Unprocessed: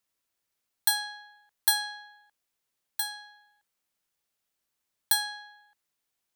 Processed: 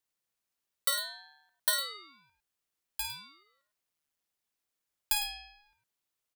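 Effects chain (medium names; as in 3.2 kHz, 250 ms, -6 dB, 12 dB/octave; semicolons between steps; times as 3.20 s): loudspeakers at several distances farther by 18 m -10 dB, 36 m -11 dB; ring modulator with a swept carrier 480 Hz, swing 85%, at 0.37 Hz; trim -2 dB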